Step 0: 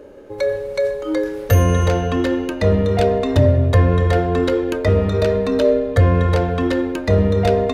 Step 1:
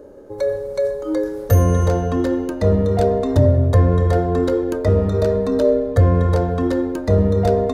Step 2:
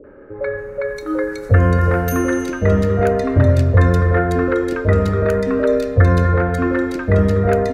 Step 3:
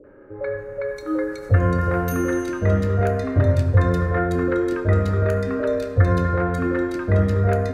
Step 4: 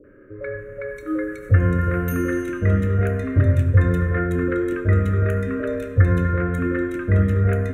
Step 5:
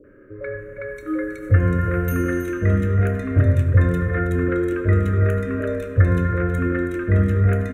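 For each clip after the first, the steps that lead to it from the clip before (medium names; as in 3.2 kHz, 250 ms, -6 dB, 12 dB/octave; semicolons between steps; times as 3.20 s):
peaking EQ 2.6 kHz -13.5 dB 1.2 oct
high-order bell 1.8 kHz +11.5 dB 1.3 oct; three bands offset in time lows, mids, highs 40/580 ms, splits 590/2600 Hz; trim +1.5 dB
reverberation RT60 1.5 s, pre-delay 5 ms, DRR 6.5 dB; trim -6 dB
static phaser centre 2 kHz, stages 4; trim +1.5 dB
delay 321 ms -12 dB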